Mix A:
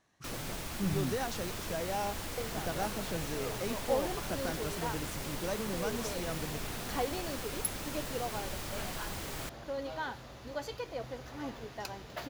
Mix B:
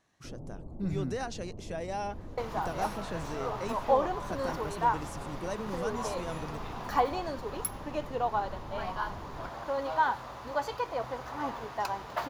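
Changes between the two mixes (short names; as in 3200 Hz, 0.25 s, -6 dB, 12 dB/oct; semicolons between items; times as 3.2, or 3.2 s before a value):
first sound: add Gaussian blur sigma 14 samples; second sound: add bell 1000 Hz +14.5 dB 1.2 oct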